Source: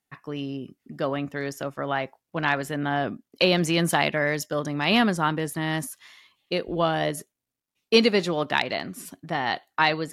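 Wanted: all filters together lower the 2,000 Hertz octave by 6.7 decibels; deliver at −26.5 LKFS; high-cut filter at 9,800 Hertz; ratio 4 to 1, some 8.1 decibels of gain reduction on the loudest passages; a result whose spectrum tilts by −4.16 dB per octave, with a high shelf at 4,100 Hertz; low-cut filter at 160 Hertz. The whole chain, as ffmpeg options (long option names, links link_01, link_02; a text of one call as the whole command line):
ffmpeg -i in.wav -af "highpass=160,lowpass=9800,equalizer=frequency=2000:width_type=o:gain=-7,highshelf=frequency=4100:gain=-6.5,acompressor=threshold=-24dB:ratio=4,volume=4.5dB" out.wav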